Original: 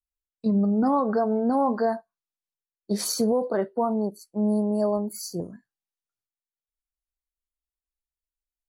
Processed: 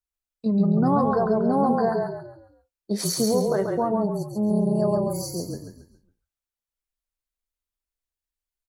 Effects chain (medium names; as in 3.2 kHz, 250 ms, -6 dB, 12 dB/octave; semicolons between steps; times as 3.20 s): frequency-shifting echo 137 ms, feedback 38%, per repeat -32 Hz, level -3 dB